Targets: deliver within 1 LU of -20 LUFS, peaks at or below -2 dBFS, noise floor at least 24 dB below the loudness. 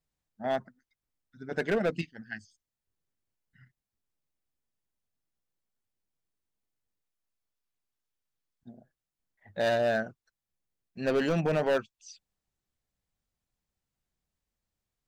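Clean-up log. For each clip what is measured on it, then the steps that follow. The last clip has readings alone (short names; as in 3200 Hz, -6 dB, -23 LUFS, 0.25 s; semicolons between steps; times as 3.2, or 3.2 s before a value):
clipped 0.8%; flat tops at -21.5 dBFS; loudness -30.0 LUFS; peak -21.5 dBFS; loudness target -20.0 LUFS
-> clip repair -21.5 dBFS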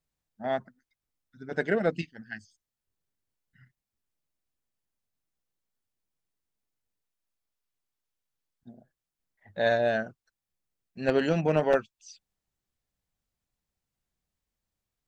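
clipped 0.0%; loudness -28.0 LUFS; peak -12.5 dBFS; loudness target -20.0 LUFS
-> gain +8 dB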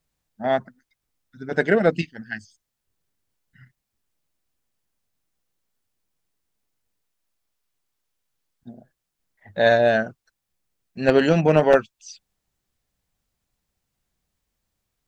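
loudness -20.0 LUFS; peak -4.5 dBFS; noise floor -81 dBFS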